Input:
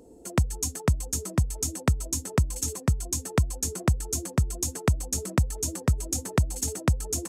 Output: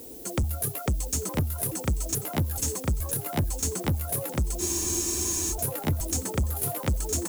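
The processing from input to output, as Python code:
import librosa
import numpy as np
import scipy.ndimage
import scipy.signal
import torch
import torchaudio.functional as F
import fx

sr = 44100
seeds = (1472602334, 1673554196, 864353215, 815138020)

y = fx.pitch_trill(x, sr, semitones=8.0, every_ms=429)
y = fx.dmg_noise_colour(y, sr, seeds[0], colour='violet', level_db=-49.0)
y = 10.0 ** (-25.5 / 20.0) * np.tanh(y / 10.0 ** (-25.5 / 20.0))
y = y + 10.0 ** (-12.5 / 20.0) * np.pad(y, (int(963 * sr / 1000.0), 0))[:len(y)]
y = fx.spec_freeze(y, sr, seeds[1], at_s=4.61, hold_s=0.91)
y = F.gain(torch.from_numpy(y), 4.5).numpy()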